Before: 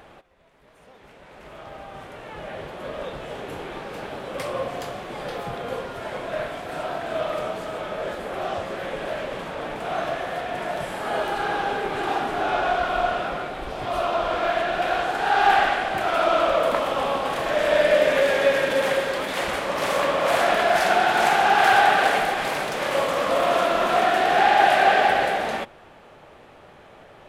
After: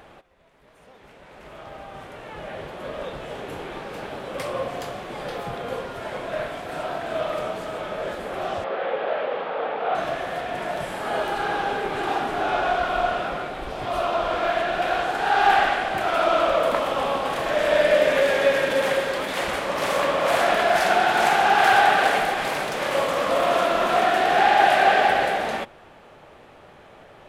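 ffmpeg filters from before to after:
ffmpeg -i in.wav -filter_complex "[0:a]asettb=1/sr,asplit=3[link_01][link_02][link_03];[link_01]atrim=end=8.644[link_04];[link_02]atrim=start=8.64:end=9.95,asetpts=PTS-STARTPTS,afade=type=in:duration=0.004:curve=qsin,afade=type=out:start_time=1.306:duration=0.004:curve=qsin,highpass=280,equalizer=frequency=310:width_type=q:width=4:gain=-4,equalizer=frequency=480:width_type=q:width=4:gain=9,equalizer=frequency=790:width_type=q:width=4:gain=7,equalizer=frequency=1300:width_type=q:width=4:gain=5,lowpass=frequency=3700:width=0.5412,lowpass=frequency=3700:width=1.3066[link_05];[link_03]atrim=start=9.946[link_06];[link_04][link_05]acrossfade=duration=0.004:curve1=hsin:curve2=qsin[link_07];[link_07][link_06]acrossfade=duration=0.004:curve1=qsin:curve2=hsin" out.wav

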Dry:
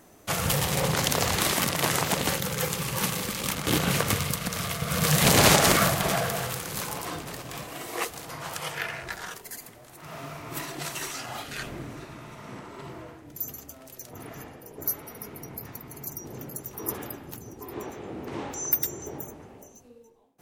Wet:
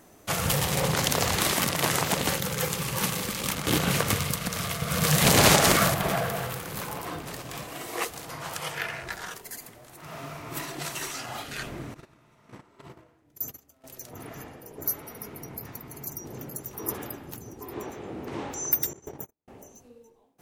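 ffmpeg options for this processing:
ffmpeg -i in.wav -filter_complex "[0:a]asettb=1/sr,asplit=3[link_01][link_02][link_03];[link_01]atrim=end=5.944[link_04];[link_02]atrim=start=5.94:end=7.24,asetpts=PTS-STARTPTS,afade=type=in:duration=0.004:curve=qsin,afade=type=out:start_time=1.296:duration=0.004:curve=qsin,equalizer=frequency=6700:width=0.56:gain=-6.5[link_05];[link_03]atrim=start=7.236[link_06];[link_04][link_05]acrossfade=duration=0.004:curve1=hsin:curve2=qsin[link_07];[link_07][link_06]acrossfade=duration=0.004:curve1=qsin:curve2=hsin,asettb=1/sr,asplit=3[link_08][link_09][link_10];[link_08]atrim=end=11.944[link_11];[link_09]atrim=start=11.94:end=13.84,asetpts=PTS-STARTPTS,afade=type=in:duration=0.004:curve=qsin,afade=type=out:start_time=1.896:duration=0.004:curve=qsin,agate=range=-17dB:threshold=-40dB:ratio=16:release=100:detection=peak[link_12];[link_10]atrim=start=13.836[link_13];[link_11][link_12]acrossfade=duration=0.004:curve1=hsin:curve2=qsin[link_14];[link_14][link_13]acrossfade=duration=0.004:curve1=qsin:curve2=hsin,asettb=1/sr,asplit=3[link_15][link_16][link_17];[link_15]atrim=end=18.934[link_18];[link_16]atrim=start=18.93:end=19.48,asetpts=PTS-STARTPTS,afade=type=in:duration=0.004:curve=qsin,afade=type=out:start_time=0.546:duration=0.004:curve=qsin,agate=range=-47dB:threshold=-38dB:ratio=16:release=100:detection=peak[link_19];[link_17]atrim=start=19.476[link_20];[link_18][link_19]acrossfade=duration=0.004:curve1=hsin:curve2=qsin[link_21];[link_21][link_20]acrossfade=duration=0.004:curve1=qsin:curve2=hsin" out.wav

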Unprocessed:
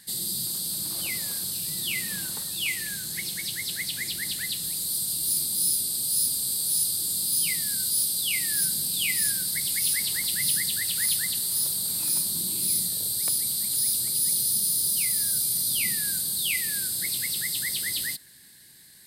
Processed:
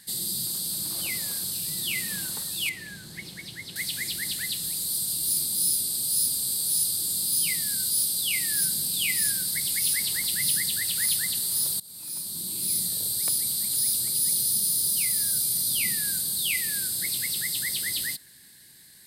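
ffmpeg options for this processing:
ffmpeg -i in.wav -filter_complex "[0:a]asettb=1/sr,asplit=3[link_01][link_02][link_03];[link_01]atrim=end=2.694[link_04];[link_02]atrim=start=2.69:end=3.76,asetpts=PTS-STARTPTS,afade=type=in:duration=0.004:curve=qsin,afade=type=out:start_time=1.066:duration=0.004:curve=qsin,lowpass=frequency=1700:poles=1[link_05];[link_03]atrim=start=3.756[link_06];[link_04][link_05]acrossfade=duration=0.004:curve1=hsin:curve2=qsin[link_07];[link_07][link_06]acrossfade=duration=0.004:curve1=qsin:curve2=hsin,asplit=2[link_08][link_09];[link_08]atrim=end=11.8,asetpts=PTS-STARTPTS,afade=type=out:start_time=11.796:duration=0.004:curve=hsin:silence=0.0794328[link_10];[link_09]atrim=start=11.8,asetpts=PTS-STARTPTS,afade=type=in:duration=1.12:silence=0.0794328[link_11];[link_10][link_11]concat=n=2:v=0:a=1" out.wav

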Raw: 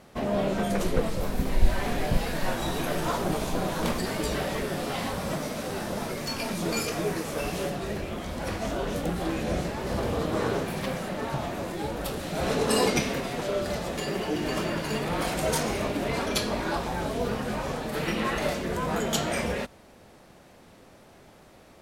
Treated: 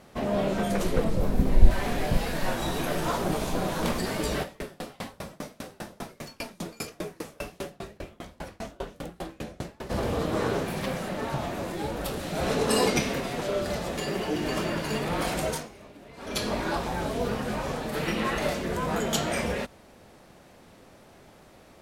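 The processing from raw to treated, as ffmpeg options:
ffmpeg -i in.wav -filter_complex "[0:a]asettb=1/sr,asplit=3[link_01][link_02][link_03];[link_01]atrim=end=1.044[link_04];[link_02]atrim=start=1.04:end=1.71,asetpts=PTS-STARTPTS,afade=type=in:duration=0.004:curve=qsin,afade=type=out:start_time=0.666:duration=0.004:curve=qsin,tiltshelf=frequency=790:gain=5[link_05];[link_03]atrim=start=1.706[link_06];[link_04][link_05]acrossfade=duration=0.004:curve1=hsin:curve2=qsin[link_07];[link_07][link_06]acrossfade=duration=0.004:curve1=qsin:curve2=hsin,asplit=3[link_08][link_09][link_10];[link_08]afade=type=out:start_time=4.42:duration=0.02[link_11];[link_09]aeval=exprs='val(0)*pow(10,-31*if(lt(mod(5*n/s,1),2*abs(5)/1000),1-mod(5*n/s,1)/(2*abs(5)/1000),(mod(5*n/s,1)-2*abs(5)/1000)/(1-2*abs(5)/1000))/20)':channel_layout=same,afade=type=in:start_time=4.42:duration=0.02,afade=type=out:start_time=9.89:duration=0.02[link_12];[link_10]afade=type=in:start_time=9.89:duration=0.02[link_13];[link_11][link_12][link_13]amix=inputs=3:normalize=0,asplit=3[link_14][link_15][link_16];[link_14]atrim=end=15.69,asetpts=PTS-STARTPTS,afade=type=out:start_time=15.39:duration=0.3:silence=0.105925[link_17];[link_15]atrim=start=15.69:end=16.17,asetpts=PTS-STARTPTS,volume=-19.5dB[link_18];[link_16]atrim=start=16.17,asetpts=PTS-STARTPTS,afade=type=in:duration=0.3:silence=0.105925[link_19];[link_17][link_18][link_19]concat=n=3:v=0:a=1" out.wav

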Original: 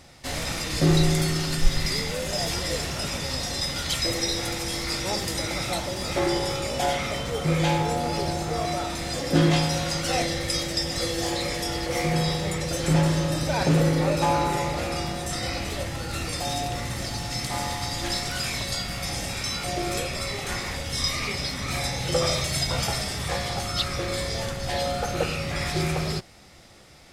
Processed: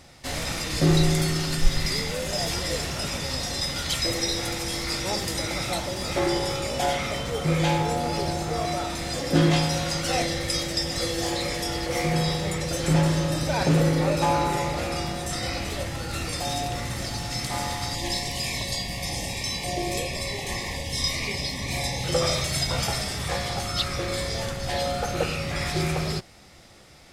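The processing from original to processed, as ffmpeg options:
ffmpeg -i in.wav -filter_complex "[0:a]asettb=1/sr,asplit=3[link_01][link_02][link_03];[link_01]atrim=end=17.954[link_04];[link_02]atrim=start=17.95:end=22.04,asetpts=PTS-STARTPTS,afade=type=in:duration=0.004:curve=qsin,afade=type=out:start_time=4.086:duration=0.004:curve=qsin,asuperstop=centerf=1400:order=12:qfactor=2.5[link_05];[link_03]atrim=start=22.036[link_06];[link_04][link_05]acrossfade=duration=0.004:curve1=hsin:curve2=qsin[link_07];[link_07][link_06]acrossfade=duration=0.004:curve1=qsin:curve2=hsin" out.wav

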